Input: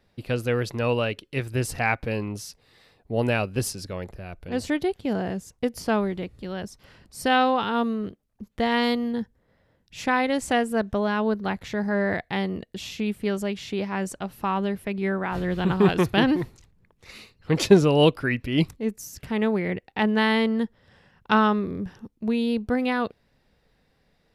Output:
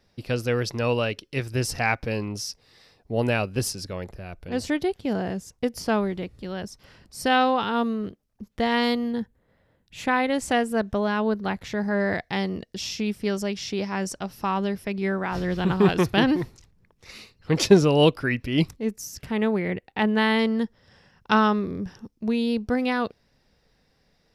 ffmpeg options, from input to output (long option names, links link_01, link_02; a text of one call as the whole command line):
ffmpeg -i in.wav -af "asetnsamples=nb_out_samples=441:pad=0,asendcmd='3.12 equalizer g 4.5;9.2 equalizer g -5;10.38 equalizer g 3.5;12 equalizer g 13.5;15.57 equalizer g 6;19.26 equalizer g -1.5;20.39 equalizer g 9.5',equalizer=frequency=5400:width_type=o:width=0.41:gain=10.5" out.wav